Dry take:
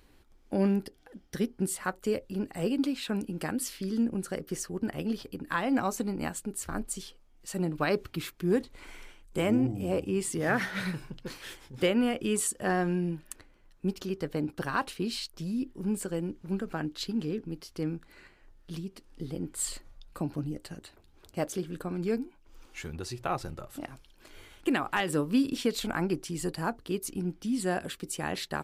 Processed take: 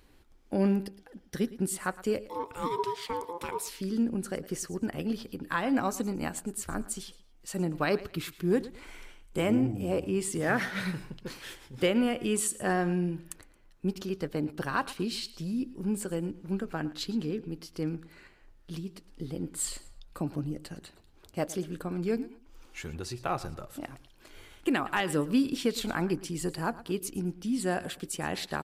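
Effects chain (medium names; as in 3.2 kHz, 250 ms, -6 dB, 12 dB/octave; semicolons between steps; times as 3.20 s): 2.29–3.68 s: ring modulator 690 Hz; feedback delay 112 ms, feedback 27%, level -17.5 dB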